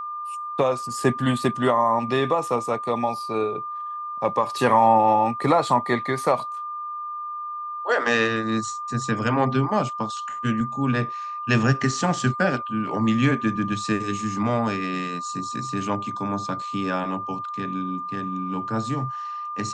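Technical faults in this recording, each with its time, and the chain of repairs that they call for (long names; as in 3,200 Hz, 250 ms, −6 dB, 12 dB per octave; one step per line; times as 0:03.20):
whistle 1,200 Hz −29 dBFS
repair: notch filter 1,200 Hz, Q 30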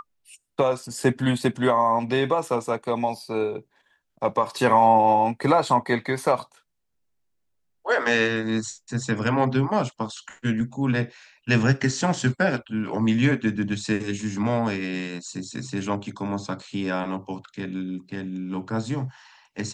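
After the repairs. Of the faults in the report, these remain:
none of them is left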